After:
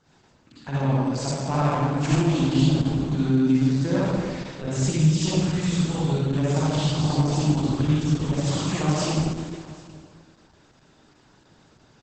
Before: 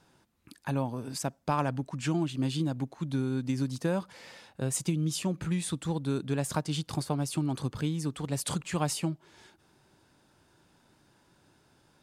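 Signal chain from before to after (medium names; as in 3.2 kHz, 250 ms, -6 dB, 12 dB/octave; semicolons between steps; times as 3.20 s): self-modulated delay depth 0.054 ms; reverberation RT60 1.7 s, pre-delay 49 ms, DRR -8 dB; 5.00–7.11 s: dynamic bell 310 Hz, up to -6 dB, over -40 dBFS, Q 7.3; delay 779 ms -22.5 dB; Opus 10 kbps 48 kHz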